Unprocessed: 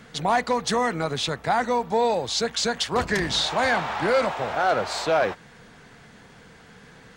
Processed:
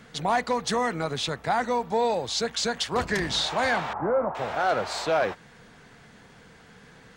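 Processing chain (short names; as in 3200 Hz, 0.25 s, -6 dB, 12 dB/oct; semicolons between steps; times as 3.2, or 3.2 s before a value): 3.93–4.35 LPF 1200 Hz 24 dB/oct; gain -2.5 dB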